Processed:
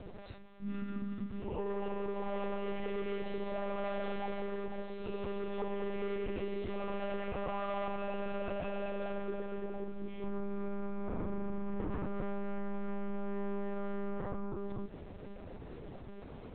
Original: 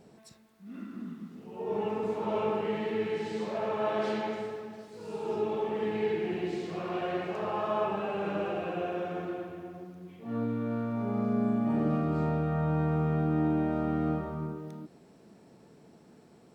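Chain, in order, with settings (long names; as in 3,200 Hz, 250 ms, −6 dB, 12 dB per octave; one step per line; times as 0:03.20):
soft clipping −30 dBFS, distortion −11 dB
0:04.93–0:05.60: parametric band 670 Hz −8.5 dB 2.4 octaves
downward compressor 10 to 1, threshold −44 dBFS, peak gain reduction 12 dB
one-pitch LPC vocoder at 8 kHz 200 Hz
level +9.5 dB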